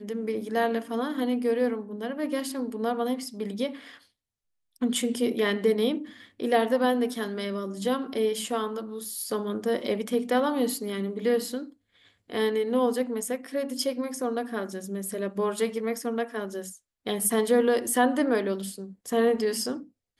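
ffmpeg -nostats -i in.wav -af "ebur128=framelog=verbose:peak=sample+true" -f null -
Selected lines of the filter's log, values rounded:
Integrated loudness:
  I:         -27.8 LUFS
  Threshold: -38.1 LUFS
Loudness range:
  LRA:         4.3 LU
  Threshold: -48.3 LUFS
  LRA low:   -30.6 LUFS
  LRA high:  -26.2 LUFS
Sample peak:
  Peak:      -10.3 dBFS
True peak:
  Peak:      -10.3 dBFS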